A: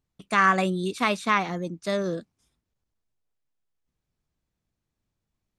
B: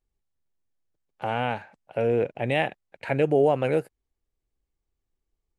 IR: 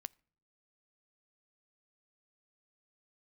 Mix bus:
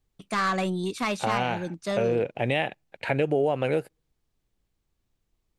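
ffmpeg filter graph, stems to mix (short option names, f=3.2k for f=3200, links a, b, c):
-filter_complex "[0:a]asoftclip=type=tanh:threshold=-19.5dB,volume=0dB[a];[1:a]equalizer=f=3.5k:w=1.5:g=4.5,volume=2.5dB,asplit=2[b][c];[c]volume=-19.5dB[d];[2:a]atrim=start_sample=2205[e];[d][e]afir=irnorm=-1:irlink=0[f];[a][b][f]amix=inputs=3:normalize=0,acompressor=threshold=-22dB:ratio=3"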